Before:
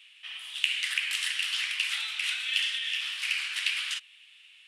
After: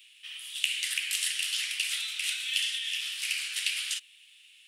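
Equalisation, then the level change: differentiator; +6.0 dB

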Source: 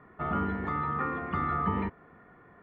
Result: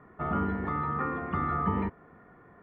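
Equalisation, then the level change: treble shelf 2.5 kHz -9 dB; +1.5 dB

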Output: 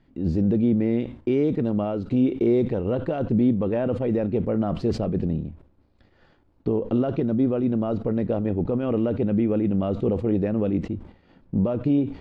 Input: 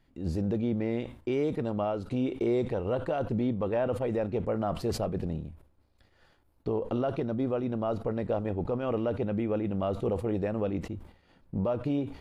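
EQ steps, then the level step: dynamic bell 900 Hz, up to -5 dB, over -44 dBFS, Q 0.84; distance through air 120 m; peaking EQ 240 Hz +6.5 dB 1.8 oct; +4.0 dB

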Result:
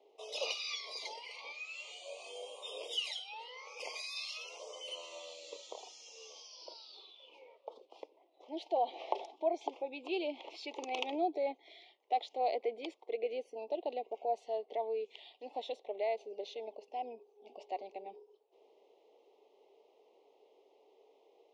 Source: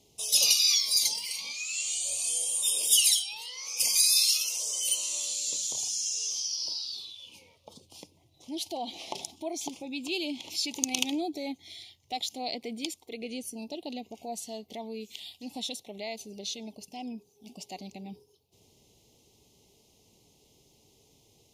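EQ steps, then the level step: steep high-pass 430 Hz 36 dB/octave; low-pass 2.4 kHz 12 dB/octave; tilt EQ -4 dB/octave; +2.5 dB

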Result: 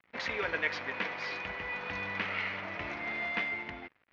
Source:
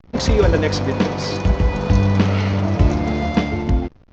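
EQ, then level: band-pass filter 2.1 kHz, Q 2.4; distance through air 110 m; 0.0 dB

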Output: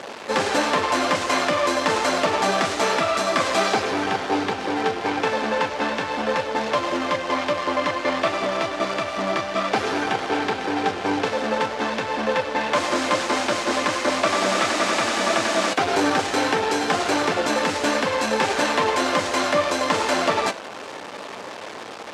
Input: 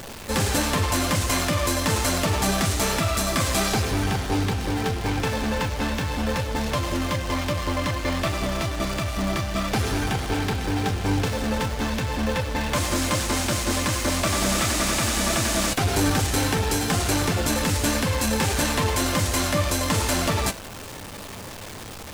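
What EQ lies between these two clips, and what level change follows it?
band-pass 400–6000 Hz; treble shelf 2.4 kHz -8.5 dB; +7.5 dB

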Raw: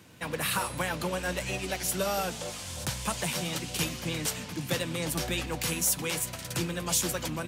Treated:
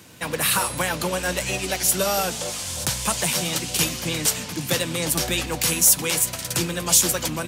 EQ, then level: tone controls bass -2 dB, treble +5 dB; +6.5 dB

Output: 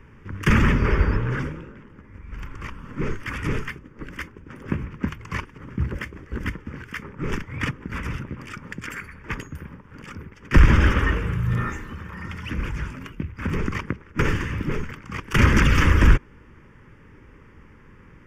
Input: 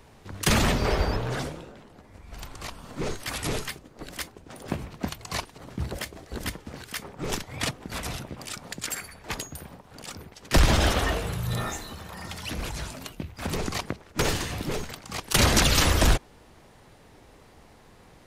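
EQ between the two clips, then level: distance through air 240 m; treble shelf 7.9 kHz +11 dB; static phaser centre 1.7 kHz, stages 4; +7.0 dB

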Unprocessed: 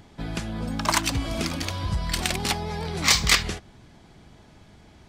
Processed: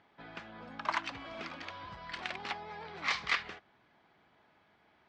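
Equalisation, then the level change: band-pass filter 1.5 kHz, Q 0.74; distance through air 150 m; -6.5 dB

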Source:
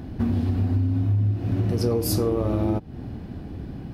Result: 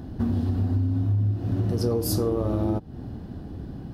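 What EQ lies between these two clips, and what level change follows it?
peaking EQ 2.3 kHz -9 dB 0.5 oct; -1.5 dB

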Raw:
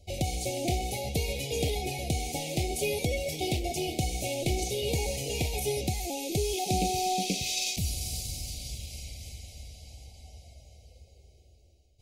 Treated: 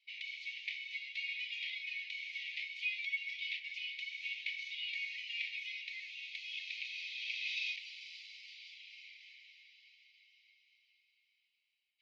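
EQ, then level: brick-wall FIR high-pass 1.7 kHz; distance through air 280 m; tape spacing loss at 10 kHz 39 dB; +14.5 dB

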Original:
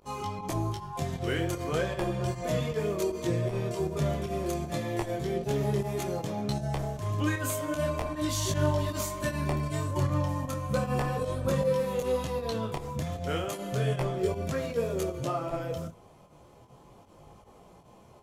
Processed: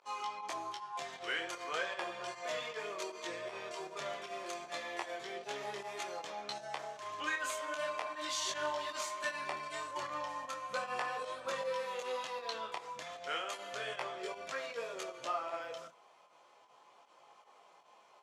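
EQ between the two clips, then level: high-pass 1 kHz 12 dB/octave; distance through air 86 m; +1.0 dB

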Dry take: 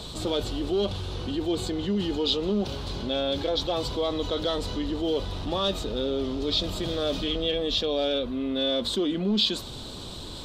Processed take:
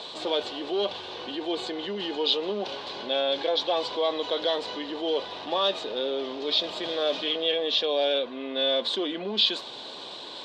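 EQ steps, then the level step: band-pass 560–3600 Hz; band-stop 1.3 kHz, Q 6.7; +5.0 dB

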